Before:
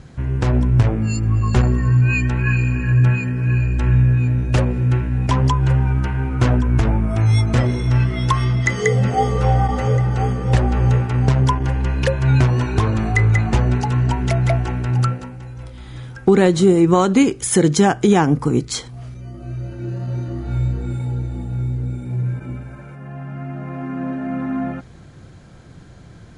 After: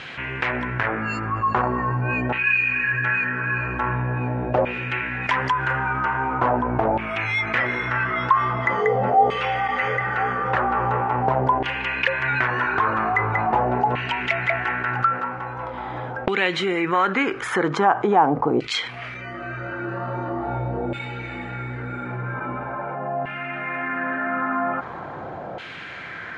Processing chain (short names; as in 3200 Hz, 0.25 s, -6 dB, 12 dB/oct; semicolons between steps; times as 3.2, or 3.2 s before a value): LFO band-pass saw down 0.43 Hz 660–2900 Hz; tone controls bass -2 dB, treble -14 dB, from 5.22 s treble -6 dB, from 6.36 s treble -15 dB; fast leveller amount 50%; gain +3.5 dB